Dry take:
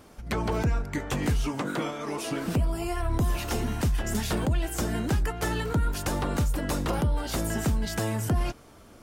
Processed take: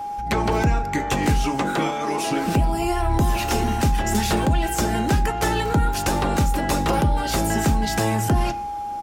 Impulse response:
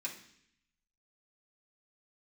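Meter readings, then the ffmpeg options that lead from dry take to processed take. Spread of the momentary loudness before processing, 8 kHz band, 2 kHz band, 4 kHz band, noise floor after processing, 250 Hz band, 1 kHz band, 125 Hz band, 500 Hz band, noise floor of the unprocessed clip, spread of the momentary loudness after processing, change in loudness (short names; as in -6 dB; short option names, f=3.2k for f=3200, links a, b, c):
4 LU, +7.0 dB, +8.0 dB, +7.5 dB, -29 dBFS, +6.5 dB, +13.0 dB, +5.0 dB, +7.0 dB, -52 dBFS, 3 LU, +7.0 dB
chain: -filter_complex "[0:a]aeval=exprs='val(0)+0.0158*sin(2*PI*820*n/s)':c=same,asplit=2[a][b];[b]aresample=16000,aresample=44100[c];[1:a]atrim=start_sample=2205[d];[c][d]afir=irnorm=-1:irlink=0,volume=-6.5dB[e];[a][e]amix=inputs=2:normalize=0,volume=6dB"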